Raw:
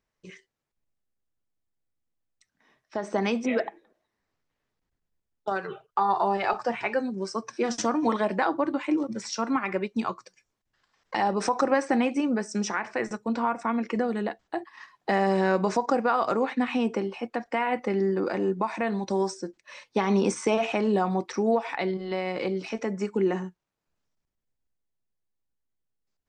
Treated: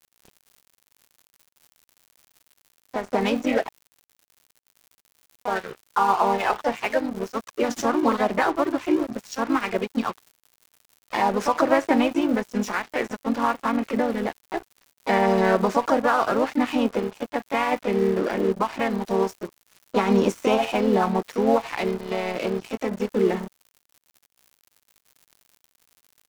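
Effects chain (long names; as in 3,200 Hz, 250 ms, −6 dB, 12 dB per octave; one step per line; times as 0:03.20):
high-shelf EQ 6,800 Hz −8 dB
pitch-shifted copies added +3 semitones −4 dB
surface crackle 260 per second −37 dBFS
dead-zone distortion −37.5 dBFS
level +3.5 dB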